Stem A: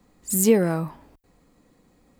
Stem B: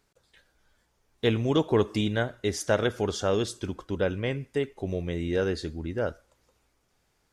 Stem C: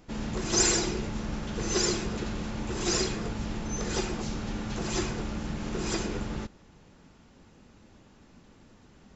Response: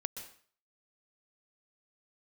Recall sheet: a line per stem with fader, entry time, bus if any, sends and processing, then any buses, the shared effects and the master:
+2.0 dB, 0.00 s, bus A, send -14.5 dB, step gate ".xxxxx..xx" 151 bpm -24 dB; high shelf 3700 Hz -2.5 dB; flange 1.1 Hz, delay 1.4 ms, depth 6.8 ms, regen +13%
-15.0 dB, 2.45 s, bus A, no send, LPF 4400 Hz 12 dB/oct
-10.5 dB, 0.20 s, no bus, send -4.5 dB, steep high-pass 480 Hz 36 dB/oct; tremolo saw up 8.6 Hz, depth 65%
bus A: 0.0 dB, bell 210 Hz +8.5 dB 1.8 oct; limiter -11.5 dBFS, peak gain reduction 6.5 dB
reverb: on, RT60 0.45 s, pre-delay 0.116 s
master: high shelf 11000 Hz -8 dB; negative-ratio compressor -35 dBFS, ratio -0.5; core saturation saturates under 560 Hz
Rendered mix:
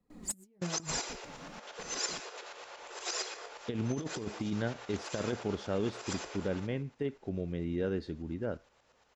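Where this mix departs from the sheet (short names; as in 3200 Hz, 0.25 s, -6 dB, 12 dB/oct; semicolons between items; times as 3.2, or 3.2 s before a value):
stem A: send off; master: missing core saturation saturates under 560 Hz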